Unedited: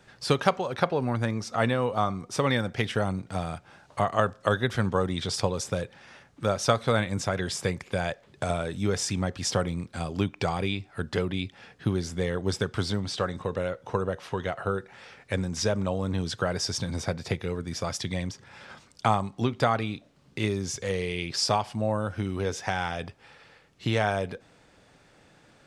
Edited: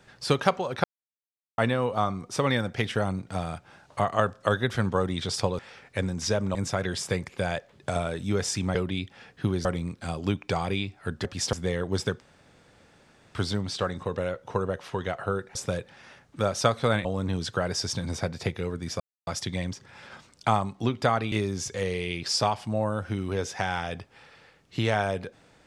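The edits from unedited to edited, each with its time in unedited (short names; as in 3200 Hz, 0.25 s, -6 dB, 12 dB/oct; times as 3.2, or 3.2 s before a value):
0.84–1.58 mute
5.59–7.09 swap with 14.94–15.9
9.29–9.57 swap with 11.17–12.07
12.74 insert room tone 1.15 s
17.85 insert silence 0.27 s
19.9–20.4 cut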